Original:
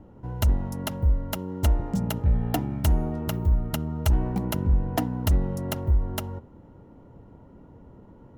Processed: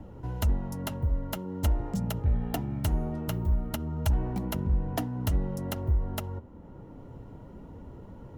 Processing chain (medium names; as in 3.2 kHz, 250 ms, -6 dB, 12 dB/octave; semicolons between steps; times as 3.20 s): flange 0.49 Hz, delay 1.1 ms, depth 7.1 ms, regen -62%; three bands compressed up and down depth 40%